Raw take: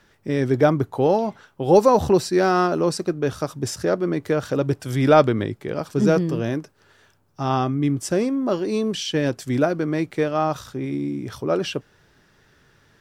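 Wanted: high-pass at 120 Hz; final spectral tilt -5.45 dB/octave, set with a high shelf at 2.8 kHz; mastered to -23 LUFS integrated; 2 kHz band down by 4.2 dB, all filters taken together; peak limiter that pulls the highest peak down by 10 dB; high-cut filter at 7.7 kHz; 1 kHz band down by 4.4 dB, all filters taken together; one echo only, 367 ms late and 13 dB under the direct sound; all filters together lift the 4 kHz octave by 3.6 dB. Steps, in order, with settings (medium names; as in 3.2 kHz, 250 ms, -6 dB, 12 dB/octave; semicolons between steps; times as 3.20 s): high-pass 120 Hz; low-pass 7.7 kHz; peaking EQ 1 kHz -5.5 dB; peaking EQ 2 kHz -6 dB; treble shelf 2.8 kHz +3.5 dB; peaking EQ 4 kHz +4.5 dB; peak limiter -14 dBFS; delay 367 ms -13 dB; trim +2 dB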